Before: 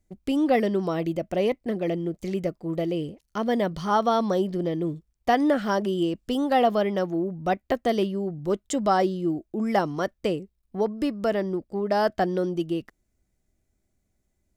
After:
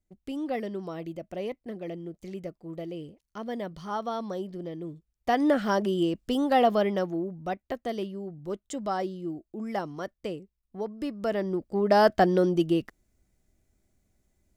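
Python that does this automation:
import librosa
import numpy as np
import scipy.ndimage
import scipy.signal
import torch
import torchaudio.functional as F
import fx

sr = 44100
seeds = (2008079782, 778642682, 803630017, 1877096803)

y = fx.gain(x, sr, db=fx.line((4.93, -10.0), (5.5, -1.0), (6.87, -1.0), (7.61, -8.5), (10.89, -8.5), (11.91, 3.0)))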